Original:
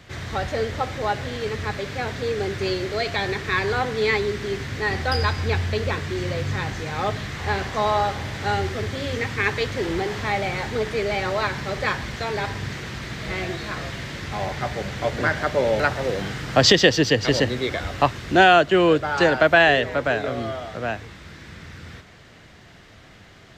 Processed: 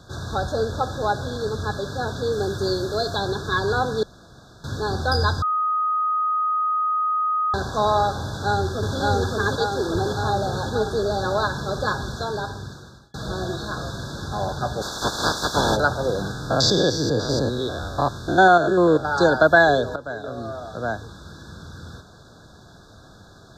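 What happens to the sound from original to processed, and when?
2.32–3.19 high shelf 10000 Hz +6.5 dB
4.03–4.64 room tone
5.42–7.54 bleep 1250 Hz -20.5 dBFS
8.25–8.98 echo throw 0.57 s, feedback 70%, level -0.5 dB
9.55–9.95 low shelf 150 Hz -7.5 dB
12.12–13.14 fade out
14.81–15.75 spectral limiter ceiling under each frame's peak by 25 dB
16.31–19.05 stepped spectrum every 0.1 s
19.96–20.97 fade in, from -14.5 dB
whole clip: FFT band-reject 1700–3400 Hz; gain +1.5 dB

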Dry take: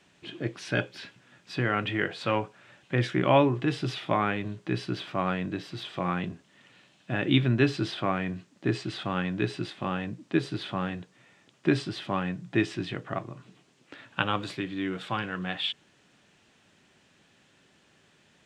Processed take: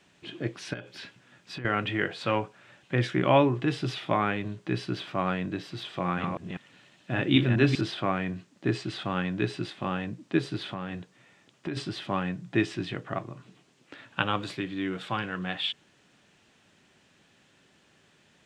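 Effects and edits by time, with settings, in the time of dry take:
0.73–1.65 compressor 16:1, threshold -34 dBFS
5.98–7.81 reverse delay 0.197 s, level -4 dB
10.72–11.77 compressor, threshold -29 dBFS

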